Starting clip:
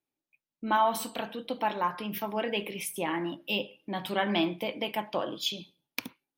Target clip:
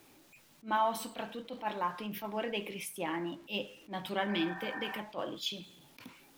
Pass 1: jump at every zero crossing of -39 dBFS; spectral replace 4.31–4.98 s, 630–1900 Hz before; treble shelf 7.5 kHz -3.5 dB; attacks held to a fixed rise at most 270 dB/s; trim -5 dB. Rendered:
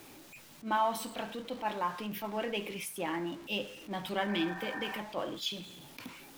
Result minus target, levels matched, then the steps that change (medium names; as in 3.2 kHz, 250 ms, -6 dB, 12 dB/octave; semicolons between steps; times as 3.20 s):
jump at every zero crossing: distortion +7 dB
change: jump at every zero crossing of -47 dBFS